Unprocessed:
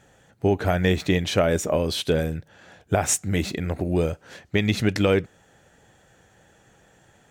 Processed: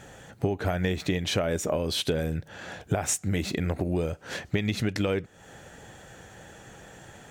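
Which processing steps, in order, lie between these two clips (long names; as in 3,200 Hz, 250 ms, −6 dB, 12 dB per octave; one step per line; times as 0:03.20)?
downward compressor 6 to 1, threshold −34 dBFS, peak gain reduction 17.5 dB
level +9 dB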